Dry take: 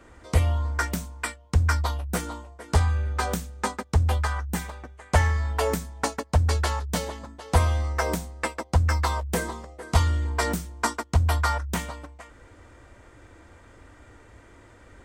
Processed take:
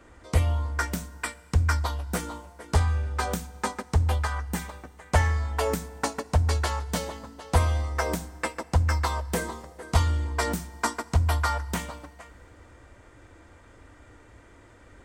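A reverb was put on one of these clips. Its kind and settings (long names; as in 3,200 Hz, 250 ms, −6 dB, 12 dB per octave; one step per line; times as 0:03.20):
feedback delay network reverb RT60 2.5 s, low-frequency decay 1×, high-frequency decay 0.9×, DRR 18.5 dB
level −1.5 dB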